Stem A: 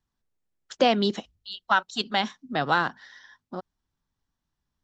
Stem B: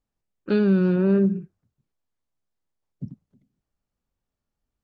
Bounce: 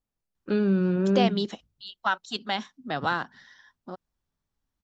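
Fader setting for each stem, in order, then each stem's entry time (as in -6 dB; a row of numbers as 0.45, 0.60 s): -4.0, -4.0 dB; 0.35, 0.00 s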